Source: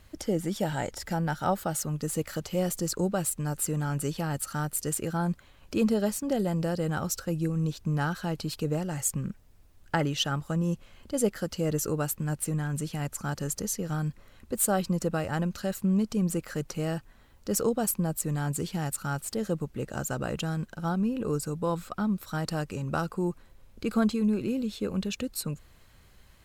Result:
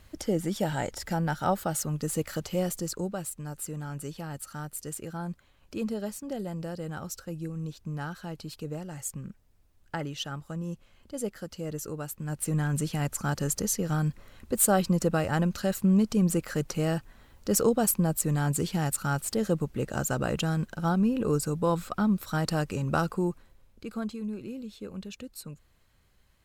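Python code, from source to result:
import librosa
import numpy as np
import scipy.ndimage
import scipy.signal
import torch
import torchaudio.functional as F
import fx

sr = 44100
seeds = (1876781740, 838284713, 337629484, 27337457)

y = fx.gain(x, sr, db=fx.line((2.5, 0.5), (3.28, -7.0), (12.12, -7.0), (12.59, 3.0), (23.11, 3.0), (23.89, -9.0)))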